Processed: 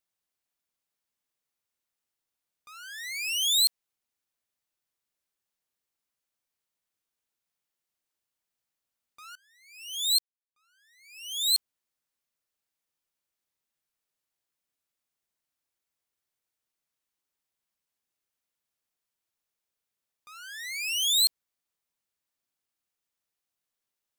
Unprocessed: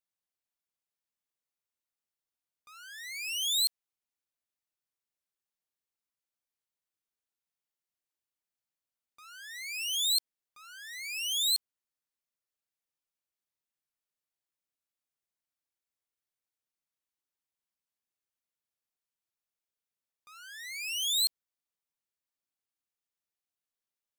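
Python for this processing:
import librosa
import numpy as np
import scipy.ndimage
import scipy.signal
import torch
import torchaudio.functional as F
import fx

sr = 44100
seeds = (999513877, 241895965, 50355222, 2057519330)

y = fx.upward_expand(x, sr, threshold_db=-42.0, expansion=2.5, at=(9.35, 11.54))
y = y * 10.0 ** (5.0 / 20.0)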